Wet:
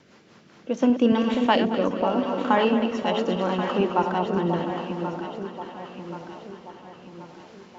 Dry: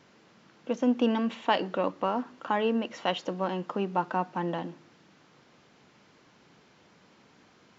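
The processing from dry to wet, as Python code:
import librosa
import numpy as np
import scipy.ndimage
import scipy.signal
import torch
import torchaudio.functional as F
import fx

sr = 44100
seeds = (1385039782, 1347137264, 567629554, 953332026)

y = fx.reverse_delay_fb(x, sr, ms=112, feedback_pct=67, wet_db=-7)
y = fx.rotary_switch(y, sr, hz=5.0, then_hz=0.8, switch_at_s=0.39)
y = fx.echo_alternate(y, sr, ms=540, hz=890.0, feedback_pct=68, wet_db=-5.5)
y = y * librosa.db_to_amplitude(6.5)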